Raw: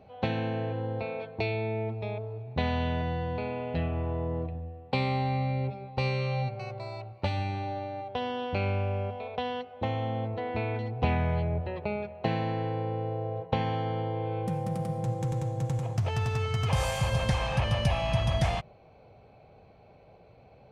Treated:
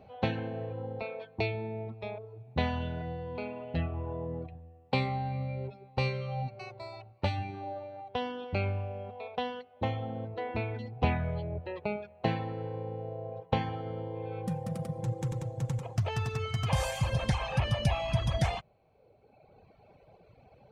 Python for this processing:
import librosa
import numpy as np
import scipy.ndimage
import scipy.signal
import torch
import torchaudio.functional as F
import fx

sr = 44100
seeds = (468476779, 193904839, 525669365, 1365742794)

y = fx.dereverb_blind(x, sr, rt60_s=1.5)